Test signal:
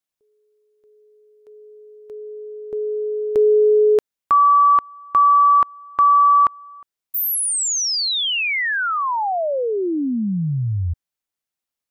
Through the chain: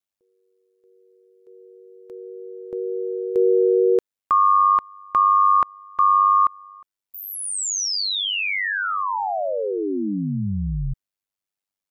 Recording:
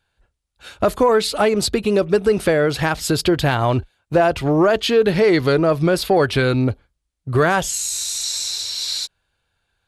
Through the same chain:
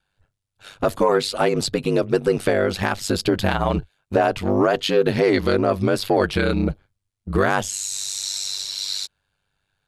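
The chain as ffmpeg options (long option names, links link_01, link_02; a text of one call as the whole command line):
ffmpeg -i in.wav -filter_complex "[0:a]acrossover=split=8900[link_01][link_02];[link_02]acompressor=threshold=-35dB:ratio=4:attack=1:release=60[link_03];[link_01][link_03]amix=inputs=2:normalize=0,aeval=exprs='val(0)*sin(2*PI*49*n/s)':channel_layout=same" out.wav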